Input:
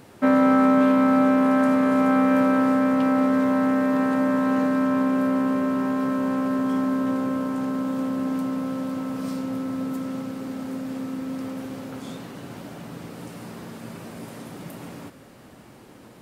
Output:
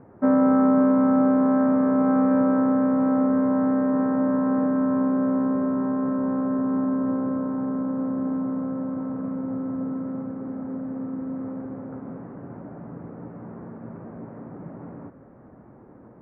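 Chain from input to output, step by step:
Bessel low-pass filter 970 Hz, order 8

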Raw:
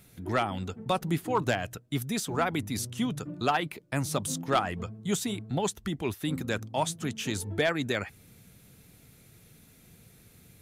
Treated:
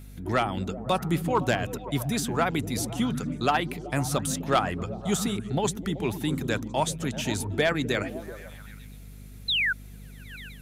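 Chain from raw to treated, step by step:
sound drawn into the spectrogram fall, 0:09.48–0:09.73, 1,400–4,200 Hz −27 dBFS
echo through a band-pass that steps 127 ms, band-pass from 170 Hz, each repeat 0.7 octaves, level −5 dB
mains hum 50 Hz, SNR 16 dB
level +2.5 dB

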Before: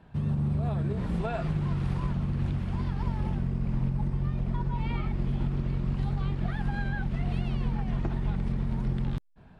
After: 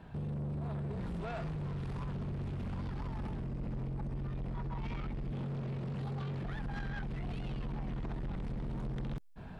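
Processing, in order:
0:05.32–0:06.43: high-pass filter 90 Hz 24 dB per octave
brickwall limiter −29 dBFS, peak gain reduction 11 dB
speech leveller within 5 dB 2 s
soft clipping −39 dBFS, distortion −10 dB
level +4 dB

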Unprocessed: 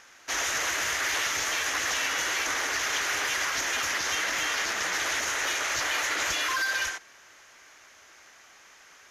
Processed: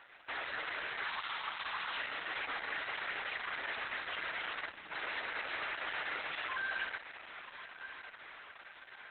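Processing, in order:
0:01.04–0:01.97: octave-band graphic EQ 125/250/500/1,000/2,000/4,000/8,000 Hz −7/−10/−10/+9/−5/+8/−9 dB
brickwall limiter −27 dBFS, peak gain reduction 10 dB
bass and treble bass −11 dB, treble −12 dB
mains-hum notches 50/100/150/200/250/300/350 Hz
0:04.71–0:04.92: time-frequency box erased 330–8,000 Hz
noise that follows the level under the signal 11 dB
feedback delay with all-pass diffusion 1,158 ms, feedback 56%, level −11 dB
Opus 8 kbit/s 48,000 Hz

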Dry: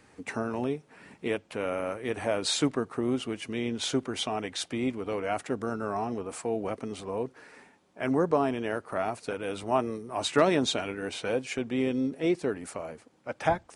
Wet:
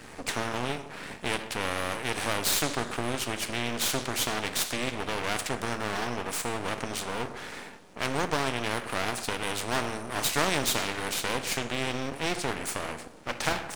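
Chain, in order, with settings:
coupled-rooms reverb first 0.47 s, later 1.5 s, DRR 9 dB
half-wave rectification
every bin compressed towards the loudest bin 2 to 1

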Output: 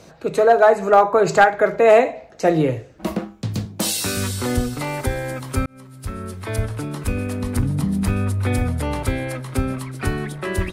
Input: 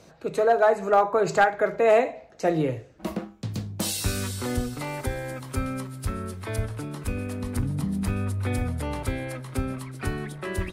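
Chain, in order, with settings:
0:03.65–0:04.17: high-pass filter 170 Hz 12 dB per octave
0:05.66–0:07.01: fade in equal-power
level +6.5 dB

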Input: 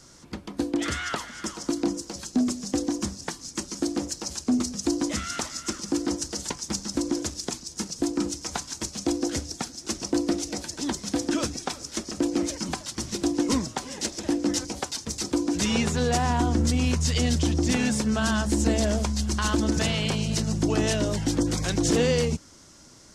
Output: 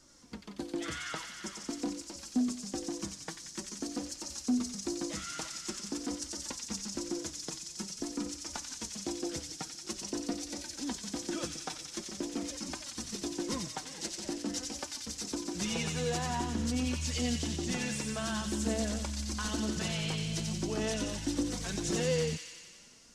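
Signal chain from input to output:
flanger 0.47 Hz, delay 3.2 ms, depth 3.4 ms, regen +27%
on a send: delay with a high-pass on its return 90 ms, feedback 72%, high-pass 2,200 Hz, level −3 dB
on the sum: level −6 dB

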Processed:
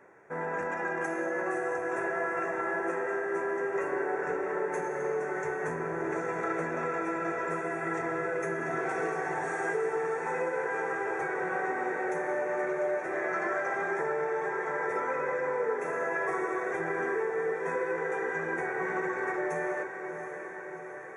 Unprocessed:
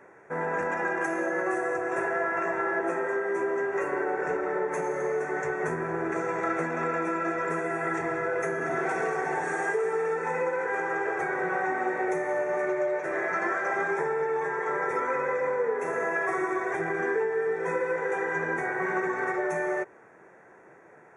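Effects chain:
feedback delay with all-pass diffusion 727 ms, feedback 66%, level −8.5 dB
level −4 dB

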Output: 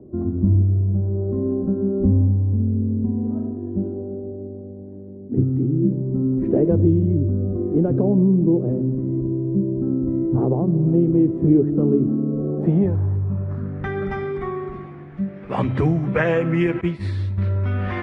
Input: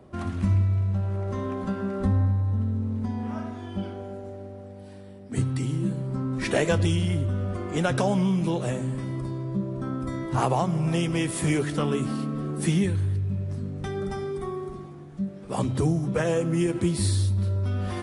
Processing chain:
low-pass filter sweep 350 Hz → 2,100 Hz, 0:12.10–0:14.02
0:16.81–0:17.38: downward expander −18 dBFS
level +4.5 dB

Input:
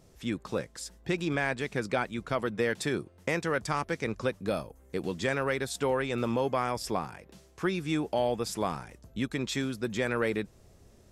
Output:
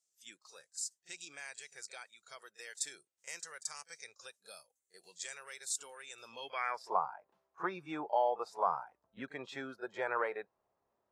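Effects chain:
noise reduction from a noise print of the clip's start 14 dB
echo ahead of the sound 35 ms −16.5 dB
band-pass filter sweep 7,400 Hz → 960 Hz, 0:06.17–0:06.92
level +4.5 dB

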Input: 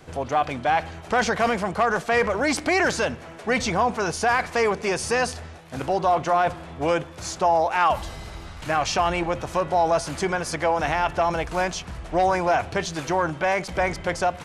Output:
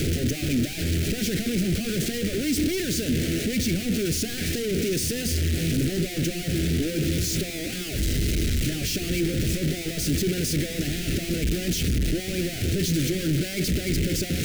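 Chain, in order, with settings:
sign of each sample alone
Butterworth band-reject 970 Hz, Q 0.61
low shelf with overshoot 440 Hz +6 dB, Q 1.5
level −3.5 dB

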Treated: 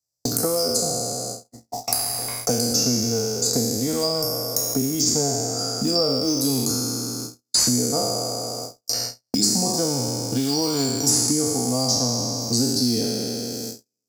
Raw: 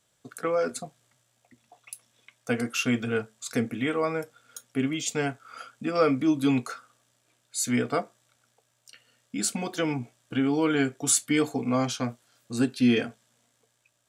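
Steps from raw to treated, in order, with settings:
peak hold with a decay on every bin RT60 1.42 s
noise gate −48 dBFS, range −53 dB
drawn EQ curve 110 Hz 0 dB, 160 Hz −6 dB, 380 Hz −7 dB, 810 Hz −5 dB, 1,600 Hz −25 dB, 3,100 Hz −28 dB, 4,900 Hz +12 dB, 8,900 Hz −2 dB, 14,000 Hz +11 dB
in parallel at −5 dB: floating-point word with a short mantissa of 2 bits
on the sum: multiband upward and downward compressor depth 100%
level +2.5 dB

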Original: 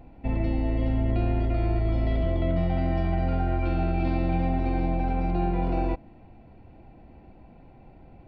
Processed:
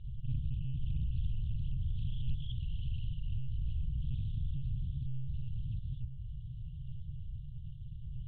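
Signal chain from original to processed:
hum removal 88.52 Hz, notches 2
0:01.06–0:03.28: parametric band 210 Hz −7.5 dB 2.1 octaves
downward compressor 12 to 1, threshold −37 dBFS, peak gain reduction 17 dB
convolution reverb RT60 0.35 s, pre-delay 42 ms, DRR −3 dB
one-pitch LPC vocoder at 8 kHz 130 Hz
linear-phase brick-wall band-stop 160–2,800 Hz
highs frequency-modulated by the lows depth 0.38 ms
level +3.5 dB

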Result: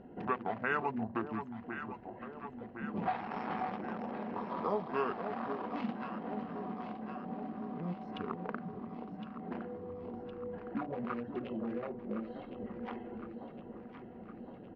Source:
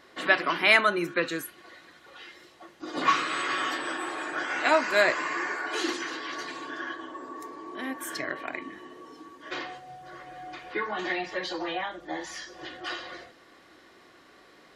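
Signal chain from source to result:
adaptive Wiener filter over 25 samples
healed spectral selection 0:04.23–0:04.91, 2,000–4,600 Hz before
downward compressor 2 to 1, threshold −53 dBFS, peak gain reduction 20.5 dB
pitch shifter −7 semitones
high-frequency loss of the air 250 metres
delay that swaps between a low-pass and a high-pass 531 ms, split 920 Hz, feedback 79%, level −7.5 dB
level +8 dB

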